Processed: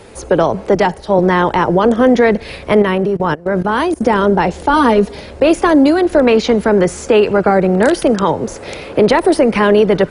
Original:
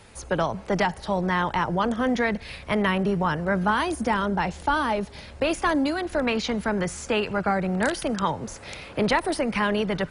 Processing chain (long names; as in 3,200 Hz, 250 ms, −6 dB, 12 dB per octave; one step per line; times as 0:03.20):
parametric band 410 Hz +11 dB 1.5 octaves
0:02.82–0:04.03: output level in coarse steps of 22 dB
0:04.73–0:05.15: comb filter 4.2 ms, depth 91%
boost into a limiter +8.5 dB
0:00.75–0:01.19: multiband upward and downward expander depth 100%
level −1 dB